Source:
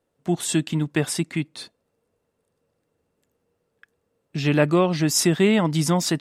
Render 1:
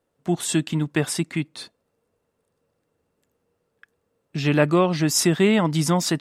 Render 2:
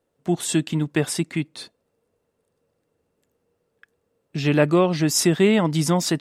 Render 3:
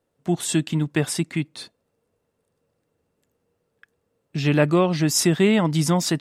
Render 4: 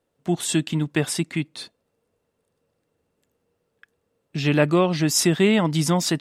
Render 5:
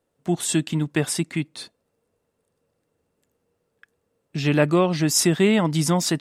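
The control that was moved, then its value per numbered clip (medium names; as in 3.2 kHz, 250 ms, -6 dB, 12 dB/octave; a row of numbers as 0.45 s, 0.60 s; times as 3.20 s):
peaking EQ, frequency: 1.2 kHz, 440 Hz, 120 Hz, 3.2 kHz, 9.1 kHz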